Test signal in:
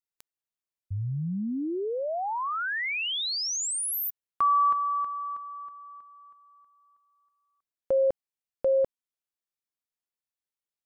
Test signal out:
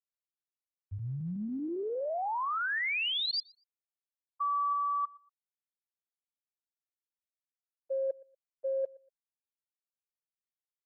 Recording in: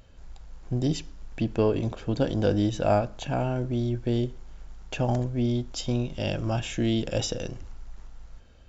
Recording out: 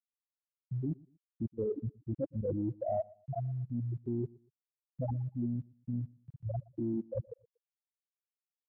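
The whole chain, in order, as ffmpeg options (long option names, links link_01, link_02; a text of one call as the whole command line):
ffmpeg -i in.wav -filter_complex "[0:a]highpass=51,afftfilt=real='re*gte(hypot(re,im),0.355)':imag='im*gte(hypot(re,im),0.355)':win_size=1024:overlap=0.75,tiltshelf=frequency=970:gain=-9,areverse,acompressor=threshold=-39dB:ratio=6:attack=11:release=49:knee=6:detection=rms,areverse,asplit=2[link_01][link_02];[link_02]adelay=119,lowpass=frequency=4400:poles=1,volume=-23.5dB,asplit=2[link_03][link_04];[link_04]adelay=119,lowpass=frequency=4400:poles=1,volume=0.29[link_05];[link_01][link_03][link_05]amix=inputs=3:normalize=0,volume=7dB" out.wav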